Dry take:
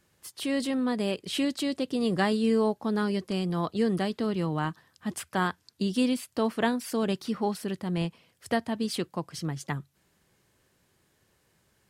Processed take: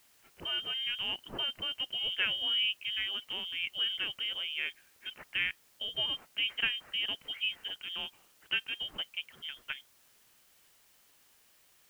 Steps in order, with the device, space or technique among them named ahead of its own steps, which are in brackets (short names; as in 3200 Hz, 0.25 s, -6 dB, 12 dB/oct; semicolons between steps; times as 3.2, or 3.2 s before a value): scrambled radio voice (BPF 330–2800 Hz; inverted band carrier 3400 Hz; white noise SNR 28 dB); gain -3.5 dB